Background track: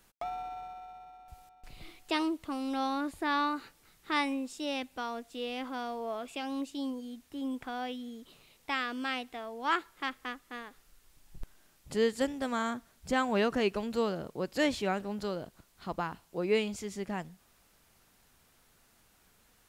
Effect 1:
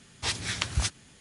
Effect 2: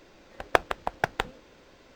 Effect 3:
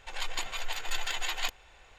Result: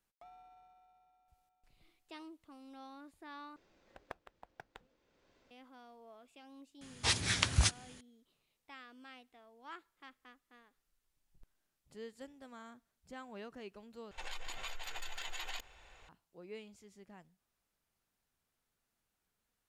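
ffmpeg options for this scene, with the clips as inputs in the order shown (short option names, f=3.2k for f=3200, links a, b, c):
-filter_complex "[0:a]volume=-20dB[a];[2:a]acompressor=threshold=-42dB:ratio=2.5:attack=27:release=879:knee=1:detection=peak[b];[3:a]acompressor=threshold=-34dB:ratio=6:attack=3.2:release=140:knee=1:detection=peak[c];[a]asplit=3[d][e][f];[d]atrim=end=3.564[g];[b]atrim=end=1.95,asetpts=PTS-STARTPTS,volume=-15.5dB[h];[e]atrim=start=5.506:end=14.114[i];[c]atrim=end=1.98,asetpts=PTS-STARTPTS,volume=-3.5dB[j];[f]atrim=start=16.086[k];[1:a]atrim=end=1.2,asetpts=PTS-STARTPTS,volume=-1dB,afade=t=in:d=0.004:c=hsin,afade=t=out:st=1.196:d=0.004:c=hsin,adelay=6810[l];[g][h]acrossfade=d=0.004:c1=hsin:c2=hsin[m];[m][i]acrossfade=d=0.004:c1=hsin:c2=hsin[n];[n][j]acrossfade=d=0.004:c1=hsin:c2=hsin[o];[o][k]acrossfade=d=0.004:c1=hsin:c2=hsin[p];[p][l]amix=inputs=2:normalize=0"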